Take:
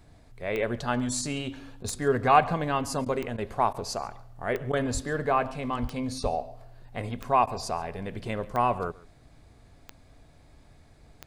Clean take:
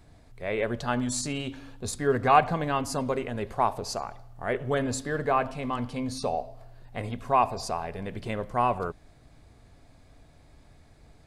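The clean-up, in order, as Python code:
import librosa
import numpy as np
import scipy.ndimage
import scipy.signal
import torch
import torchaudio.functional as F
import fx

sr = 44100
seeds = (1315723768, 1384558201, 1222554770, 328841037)

y = fx.fix_declick_ar(x, sr, threshold=10.0)
y = fx.fix_deplosive(y, sr, at_s=(4.93, 5.81, 6.22))
y = fx.fix_interpolate(y, sr, at_s=(1.83, 3.05, 3.37, 3.73, 4.72, 7.46), length_ms=11.0)
y = fx.fix_echo_inverse(y, sr, delay_ms=139, level_db=-22.0)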